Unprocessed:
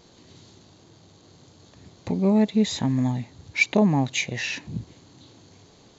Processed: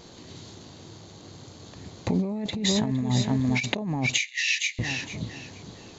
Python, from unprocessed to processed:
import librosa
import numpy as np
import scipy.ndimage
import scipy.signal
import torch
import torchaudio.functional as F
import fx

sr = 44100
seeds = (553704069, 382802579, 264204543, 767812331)

p1 = x + fx.echo_feedback(x, sr, ms=461, feedback_pct=23, wet_db=-8, dry=0)
p2 = fx.over_compress(p1, sr, threshold_db=-27.0, ratio=-1.0)
p3 = fx.steep_highpass(p2, sr, hz=1800.0, slope=96, at=(4.18, 4.79))
y = F.gain(torch.from_numpy(p3), 2.0).numpy()